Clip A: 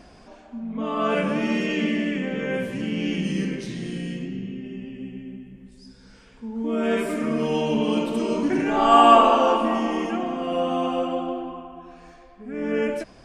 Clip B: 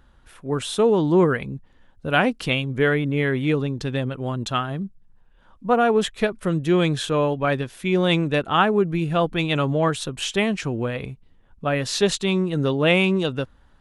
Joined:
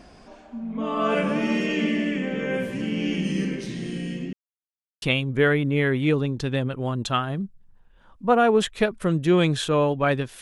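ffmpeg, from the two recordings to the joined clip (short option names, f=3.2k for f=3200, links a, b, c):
-filter_complex "[0:a]apad=whole_dur=10.41,atrim=end=10.41,asplit=2[a][b];[a]atrim=end=4.33,asetpts=PTS-STARTPTS,afade=t=out:st=4.326:d=0.004:c=hsin[c];[b]atrim=start=4.33:end=5.02,asetpts=PTS-STARTPTS,volume=0[d];[1:a]atrim=start=2.43:end=7.82,asetpts=PTS-STARTPTS,afade=t=in:d=0.004:c=hsin[e];[c][d][e]concat=n=3:v=0:a=1"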